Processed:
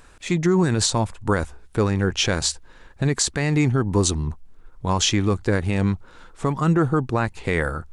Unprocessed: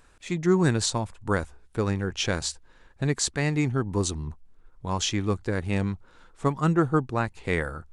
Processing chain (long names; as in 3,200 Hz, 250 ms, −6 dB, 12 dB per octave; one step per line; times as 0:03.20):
boost into a limiter +16.5 dB
level −8.5 dB